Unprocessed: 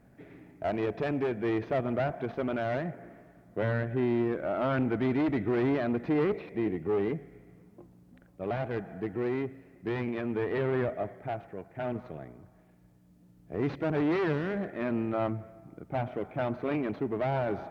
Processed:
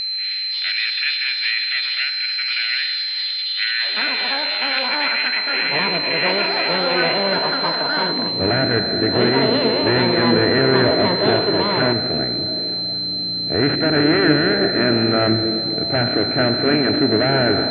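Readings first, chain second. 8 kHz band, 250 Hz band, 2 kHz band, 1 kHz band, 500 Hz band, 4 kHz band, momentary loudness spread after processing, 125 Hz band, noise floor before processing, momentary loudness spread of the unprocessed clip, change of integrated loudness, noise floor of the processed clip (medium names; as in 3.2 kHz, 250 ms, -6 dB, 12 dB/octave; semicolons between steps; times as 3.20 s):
no reading, +10.5 dB, +20.0 dB, +13.5 dB, +10.5 dB, +37.0 dB, 5 LU, +9.5 dB, -60 dBFS, 11 LU, +14.0 dB, -24 dBFS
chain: spectral levelling over time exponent 0.4; high-pass sweep 2.5 kHz -> 69 Hz, 7.67–8.49 s; peaking EQ 2.7 kHz +10 dB 1.3 oct; repeats whose band climbs or falls 230 ms, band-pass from 250 Hz, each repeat 0.7 oct, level -4 dB; ever faster or slower copies 113 ms, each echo +7 st, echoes 2; whistle 4.1 kHz -26 dBFS; resampled via 11.025 kHz; dynamic bell 1.6 kHz, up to +7 dB, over -40 dBFS, Q 2.7; spectral contrast expander 1.5:1; trim +3 dB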